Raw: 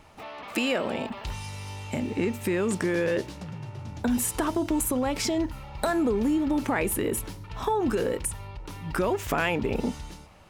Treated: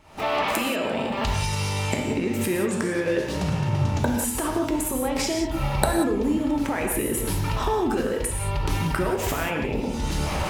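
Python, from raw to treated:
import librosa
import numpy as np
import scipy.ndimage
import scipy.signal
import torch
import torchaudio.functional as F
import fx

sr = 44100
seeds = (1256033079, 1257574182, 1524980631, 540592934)

y = fx.recorder_agc(x, sr, target_db=-15.0, rise_db_per_s=75.0, max_gain_db=30)
y = fx.rev_gated(y, sr, seeds[0], gate_ms=210, shape='flat', drr_db=1.0)
y = y * librosa.db_to_amplitude(-4.0)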